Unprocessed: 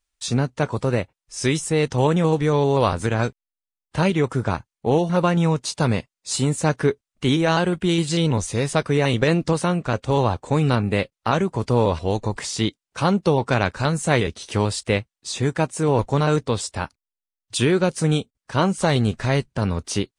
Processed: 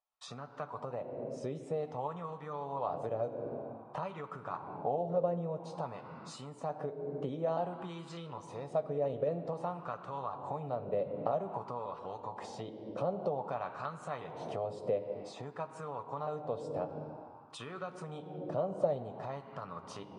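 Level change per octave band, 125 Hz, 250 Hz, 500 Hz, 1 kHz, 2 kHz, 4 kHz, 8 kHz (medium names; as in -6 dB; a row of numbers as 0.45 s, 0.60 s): -23.0 dB, -22.0 dB, -13.5 dB, -13.0 dB, -25.5 dB, -26.0 dB, under -25 dB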